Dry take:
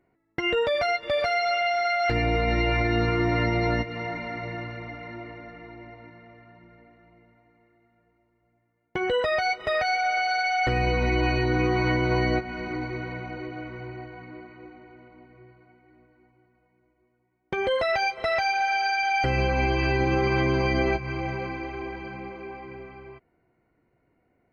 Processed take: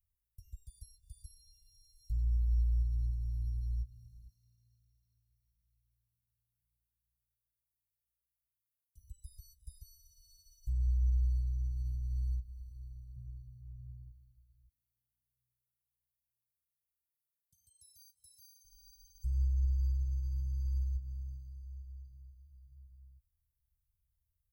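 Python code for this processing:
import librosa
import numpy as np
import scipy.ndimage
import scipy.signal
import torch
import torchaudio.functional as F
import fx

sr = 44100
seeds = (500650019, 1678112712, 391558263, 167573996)

y = fx.highpass(x, sr, hz=640.0, slope=6, at=(4.29, 8.97))
y = fx.peak_eq(y, sr, hz=190.0, db=11.0, octaves=3.0, at=(13.16, 14.11))
y = fx.highpass(y, sr, hz=320.0, slope=12, at=(14.68, 18.64))
y = scipy.signal.sosfilt(scipy.signal.cheby2(4, 80, [370.0, 2400.0], 'bandstop', fs=sr, output='sos'), y)
y = fx.high_shelf(y, sr, hz=2300.0, db=7.5)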